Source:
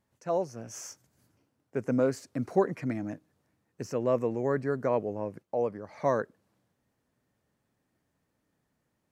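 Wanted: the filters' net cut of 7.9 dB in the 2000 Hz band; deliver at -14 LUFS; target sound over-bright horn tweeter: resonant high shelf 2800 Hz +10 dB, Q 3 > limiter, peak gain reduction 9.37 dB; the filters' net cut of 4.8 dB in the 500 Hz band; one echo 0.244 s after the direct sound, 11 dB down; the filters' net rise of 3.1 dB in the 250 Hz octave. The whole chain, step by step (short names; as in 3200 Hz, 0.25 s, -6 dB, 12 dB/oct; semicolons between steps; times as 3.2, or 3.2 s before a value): bell 250 Hz +5.5 dB; bell 500 Hz -7 dB; bell 2000 Hz -5 dB; resonant high shelf 2800 Hz +10 dB, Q 3; echo 0.244 s -11 dB; gain +20.5 dB; limiter -2 dBFS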